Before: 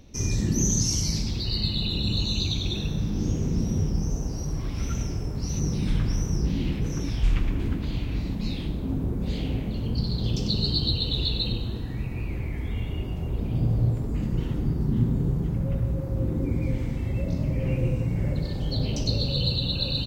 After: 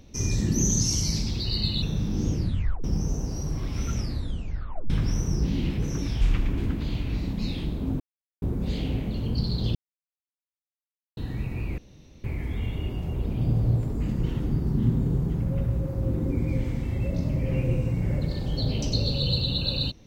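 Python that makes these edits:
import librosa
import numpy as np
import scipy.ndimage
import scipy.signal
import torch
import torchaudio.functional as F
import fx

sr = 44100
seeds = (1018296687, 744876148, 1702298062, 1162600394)

y = fx.edit(x, sr, fx.cut(start_s=1.82, length_s=1.02),
    fx.tape_stop(start_s=3.34, length_s=0.52),
    fx.tape_stop(start_s=4.96, length_s=0.96),
    fx.insert_silence(at_s=9.02, length_s=0.42),
    fx.silence(start_s=10.35, length_s=1.42),
    fx.insert_room_tone(at_s=12.38, length_s=0.46), tone=tone)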